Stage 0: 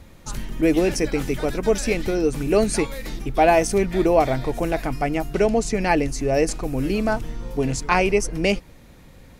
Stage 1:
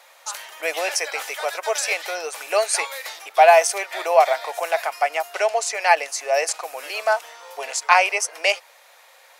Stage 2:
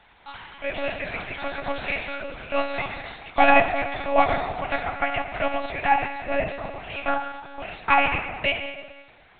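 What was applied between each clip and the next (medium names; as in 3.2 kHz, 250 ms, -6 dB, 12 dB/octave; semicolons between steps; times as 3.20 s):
steep high-pass 610 Hz 36 dB/octave; endings held to a fixed fall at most 580 dB/s; trim +5.5 dB
plate-style reverb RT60 1.5 s, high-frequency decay 0.75×, DRR 3.5 dB; monotone LPC vocoder at 8 kHz 280 Hz; trim -4.5 dB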